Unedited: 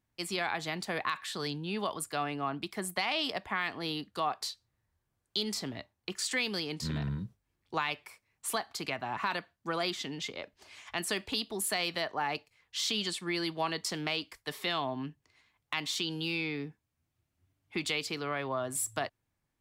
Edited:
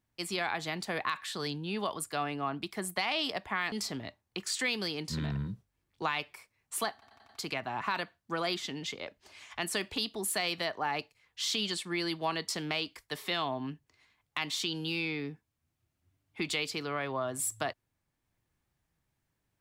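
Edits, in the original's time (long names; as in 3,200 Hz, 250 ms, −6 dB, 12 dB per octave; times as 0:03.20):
0:03.72–0:05.44: remove
0:08.65: stutter 0.09 s, 5 plays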